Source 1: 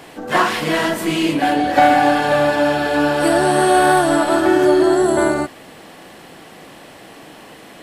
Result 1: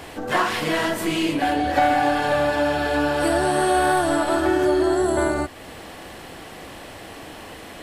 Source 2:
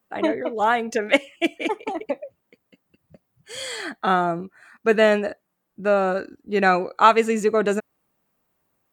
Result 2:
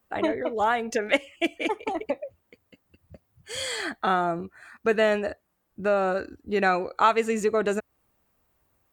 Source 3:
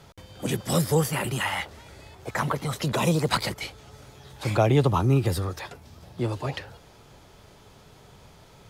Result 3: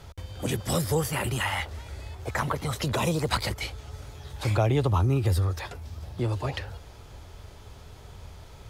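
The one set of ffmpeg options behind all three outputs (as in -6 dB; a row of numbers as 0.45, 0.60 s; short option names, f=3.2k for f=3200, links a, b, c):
-af "lowshelf=f=110:t=q:w=1.5:g=9,acompressor=threshold=-30dB:ratio=1.5,volume=1.5dB"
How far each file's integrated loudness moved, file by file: -5.5, -4.5, -2.0 LU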